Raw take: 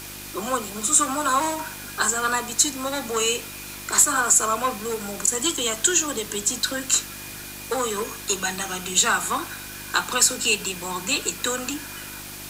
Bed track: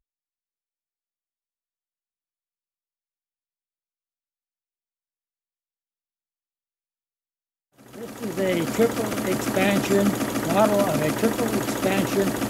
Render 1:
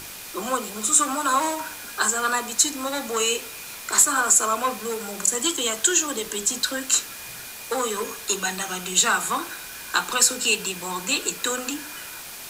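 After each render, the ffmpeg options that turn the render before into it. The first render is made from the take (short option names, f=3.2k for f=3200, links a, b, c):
-af "bandreject=f=50:t=h:w=4,bandreject=f=100:t=h:w=4,bandreject=f=150:t=h:w=4,bandreject=f=200:t=h:w=4,bandreject=f=250:t=h:w=4,bandreject=f=300:t=h:w=4,bandreject=f=350:t=h:w=4,bandreject=f=400:t=h:w=4,bandreject=f=450:t=h:w=4,bandreject=f=500:t=h:w=4,bandreject=f=550:t=h:w=4,bandreject=f=600:t=h:w=4"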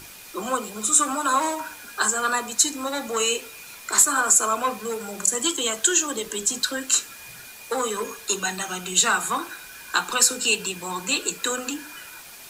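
-af "afftdn=nr=6:nf=-38"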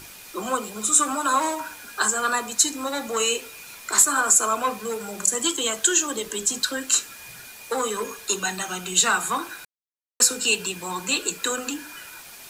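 -filter_complex "[0:a]asplit=3[a][b][c];[a]atrim=end=9.65,asetpts=PTS-STARTPTS,afade=t=out:st=9.646:d=0.004:c=hsin[d];[b]atrim=start=9.65:end=10.2,asetpts=PTS-STARTPTS,volume=0[e];[c]atrim=start=10.2,asetpts=PTS-STARTPTS,afade=t=in:d=0.004:c=hsin[f];[d][e][f]concat=n=3:v=0:a=1"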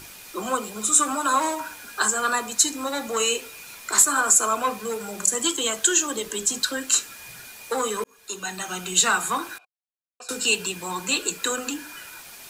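-filter_complex "[0:a]asettb=1/sr,asplit=3[a][b][c];[a]atrim=end=9.584[d];[b]atrim=start=9.58:end=10.29,asetpts=PTS-STARTPTS,afade=t=in:d=0.004:c=qsin,afade=t=out:st=0.706:d=0.004:c=qsin,asplit=3[e][f][g];[e]bandpass=f=730:t=q:w=8,volume=0dB[h];[f]bandpass=f=1.09k:t=q:w=8,volume=-6dB[i];[g]bandpass=f=2.44k:t=q:w=8,volume=-9dB[j];[h][i][j]amix=inputs=3:normalize=0[k];[c]atrim=start=10.286[l];[d][k]acrossfade=d=0.004:c1=hsin:c2=qsin[m];[m][l]acrossfade=d=0.004:c1=qsin:c2=hsin,asplit=2[n][o];[n]atrim=end=8.04,asetpts=PTS-STARTPTS,afade=t=out:st=8.036:d=0.004:c=hsin[p];[o]atrim=start=8.04,asetpts=PTS-STARTPTS,afade=t=in:d=0.75[q];[p][q]concat=n=2:v=0:a=1"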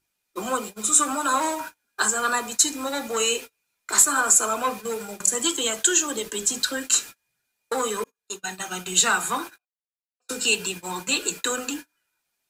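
-af "bandreject=f=1.1k:w=20,agate=range=-35dB:threshold=-33dB:ratio=16:detection=peak"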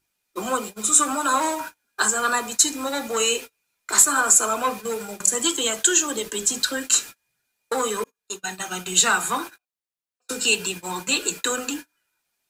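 -af "volume=1.5dB"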